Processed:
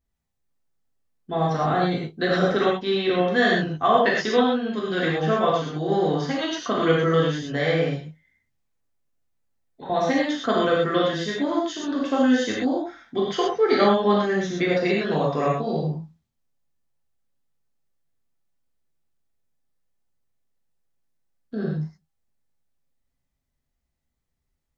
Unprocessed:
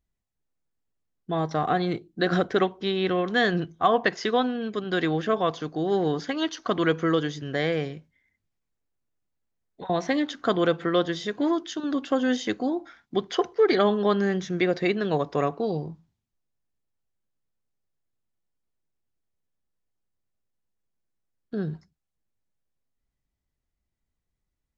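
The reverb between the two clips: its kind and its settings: gated-style reverb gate 150 ms flat, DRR -5 dB; trim -2.5 dB

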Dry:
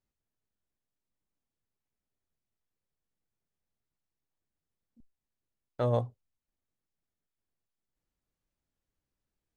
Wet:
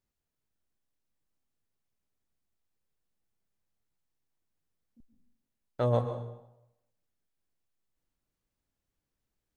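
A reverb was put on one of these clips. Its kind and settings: plate-style reverb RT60 0.85 s, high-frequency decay 0.8×, pre-delay 110 ms, DRR 7.5 dB; trim +1 dB

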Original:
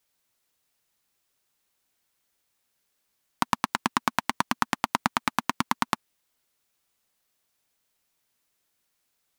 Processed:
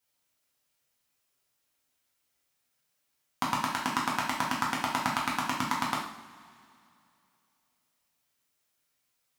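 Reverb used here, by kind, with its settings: two-slope reverb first 0.57 s, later 2.7 s, from -19 dB, DRR -4.5 dB; trim -7.5 dB

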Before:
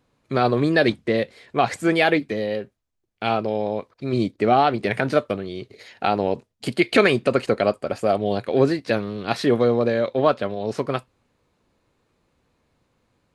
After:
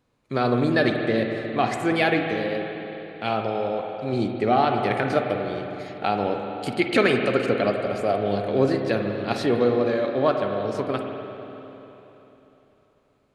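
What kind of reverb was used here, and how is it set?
spring tank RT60 3.5 s, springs 45/49 ms, chirp 30 ms, DRR 3 dB; trim -3.5 dB

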